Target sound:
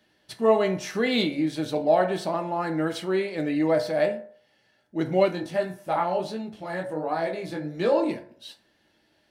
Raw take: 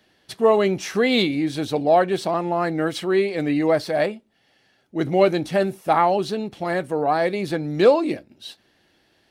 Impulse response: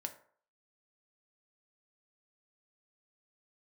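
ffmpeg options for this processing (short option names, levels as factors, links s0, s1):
-filter_complex "[1:a]atrim=start_sample=2205[s0];[0:a][s0]afir=irnorm=-1:irlink=0,asplit=3[s1][s2][s3];[s1]afade=t=out:st=5.28:d=0.02[s4];[s2]flanger=delay=17:depth=5.8:speed=1.4,afade=t=in:st=5.28:d=0.02,afade=t=out:st=7.94:d=0.02[s5];[s3]afade=t=in:st=7.94:d=0.02[s6];[s4][s5][s6]amix=inputs=3:normalize=0,volume=0.75"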